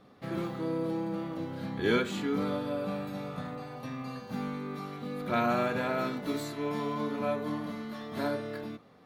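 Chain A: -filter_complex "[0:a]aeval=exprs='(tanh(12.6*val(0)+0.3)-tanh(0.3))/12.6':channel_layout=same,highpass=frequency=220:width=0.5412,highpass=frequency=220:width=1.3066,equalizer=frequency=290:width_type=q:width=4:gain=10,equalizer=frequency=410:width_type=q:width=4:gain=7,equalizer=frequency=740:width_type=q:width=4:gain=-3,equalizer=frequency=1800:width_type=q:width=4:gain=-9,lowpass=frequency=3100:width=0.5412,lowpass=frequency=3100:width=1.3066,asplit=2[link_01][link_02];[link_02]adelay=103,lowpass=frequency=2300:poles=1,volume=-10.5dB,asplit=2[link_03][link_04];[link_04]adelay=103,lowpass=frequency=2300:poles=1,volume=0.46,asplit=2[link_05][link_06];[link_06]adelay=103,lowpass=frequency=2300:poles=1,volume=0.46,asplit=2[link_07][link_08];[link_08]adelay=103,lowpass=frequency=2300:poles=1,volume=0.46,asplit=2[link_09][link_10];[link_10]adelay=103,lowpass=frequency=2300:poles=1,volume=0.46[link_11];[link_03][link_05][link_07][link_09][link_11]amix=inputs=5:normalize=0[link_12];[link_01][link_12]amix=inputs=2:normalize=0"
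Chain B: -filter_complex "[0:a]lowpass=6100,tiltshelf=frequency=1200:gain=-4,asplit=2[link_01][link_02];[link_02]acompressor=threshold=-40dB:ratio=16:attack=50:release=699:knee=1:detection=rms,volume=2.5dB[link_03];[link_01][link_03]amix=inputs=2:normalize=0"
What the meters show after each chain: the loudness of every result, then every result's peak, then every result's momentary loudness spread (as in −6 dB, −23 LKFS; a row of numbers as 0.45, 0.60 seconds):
−30.5, −32.5 LKFS; −13.5, −13.0 dBFS; 10, 8 LU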